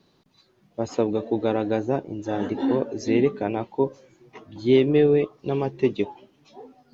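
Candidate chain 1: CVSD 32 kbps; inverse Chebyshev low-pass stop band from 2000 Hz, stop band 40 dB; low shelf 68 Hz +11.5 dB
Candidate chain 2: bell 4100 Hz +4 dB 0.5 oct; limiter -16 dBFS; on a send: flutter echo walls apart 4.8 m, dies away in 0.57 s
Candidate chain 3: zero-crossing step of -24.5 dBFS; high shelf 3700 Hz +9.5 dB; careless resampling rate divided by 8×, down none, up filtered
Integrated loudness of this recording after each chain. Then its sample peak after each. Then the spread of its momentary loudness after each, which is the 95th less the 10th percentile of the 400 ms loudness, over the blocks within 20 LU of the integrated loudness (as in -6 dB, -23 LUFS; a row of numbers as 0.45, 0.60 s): -24.0, -25.0, -22.0 LUFS; -7.5, -10.0, -5.5 dBFS; 11, 20, 10 LU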